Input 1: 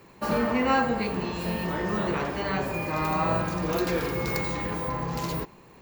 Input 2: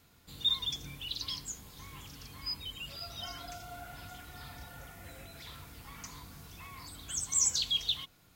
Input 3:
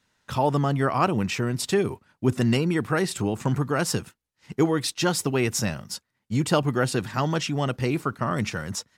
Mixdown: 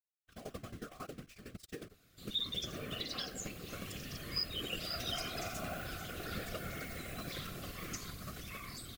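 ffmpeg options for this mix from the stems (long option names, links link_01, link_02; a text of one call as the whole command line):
ffmpeg -i stem1.wav -i stem2.wav -i stem3.wav -filter_complex "[0:a]equalizer=frequency=2900:width=1.8:gain=10,adelay=2450,volume=-15.5dB[link_01];[1:a]dynaudnorm=framelen=220:gausssize=17:maxgain=7dB,adelay=1900,volume=2.5dB[link_02];[2:a]acrusher=bits=5:dc=4:mix=0:aa=0.000001,aeval=exprs='val(0)*pow(10,-19*if(lt(mod(11*n/s,1),2*abs(11)/1000),1-mod(11*n/s,1)/(2*abs(11)/1000),(mod(11*n/s,1)-2*abs(11)/1000)/(1-2*abs(11)/1000))/20)':channel_layout=same,volume=-12.5dB[link_03];[link_01][link_02][link_03]amix=inputs=3:normalize=0,afftfilt=real='hypot(re,im)*cos(2*PI*random(0))':imag='hypot(re,im)*sin(2*PI*random(1))':win_size=512:overlap=0.75,asuperstop=centerf=910:order=4:qfactor=2.8,alimiter=level_in=2dB:limit=-24dB:level=0:latency=1:release=300,volume=-2dB" out.wav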